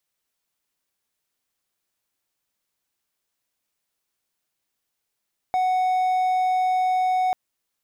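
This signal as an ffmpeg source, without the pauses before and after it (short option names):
-f lavfi -i "aevalsrc='0.15*(1-4*abs(mod(741*t+0.25,1)-0.5))':d=1.79:s=44100"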